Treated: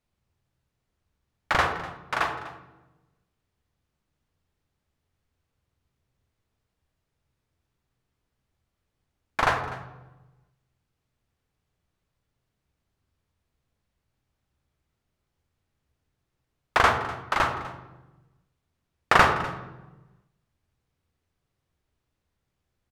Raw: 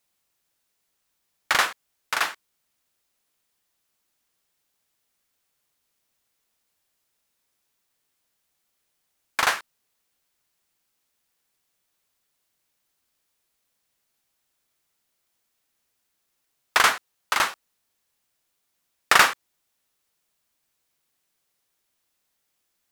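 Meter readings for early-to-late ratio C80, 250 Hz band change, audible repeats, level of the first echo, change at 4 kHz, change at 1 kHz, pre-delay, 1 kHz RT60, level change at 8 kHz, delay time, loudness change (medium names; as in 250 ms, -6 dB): 9.5 dB, +7.5 dB, 1, -17.5 dB, -7.5 dB, +1.0 dB, 33 ms, 0.95 s, -12.5 dB, 248 ms, -2.5 dB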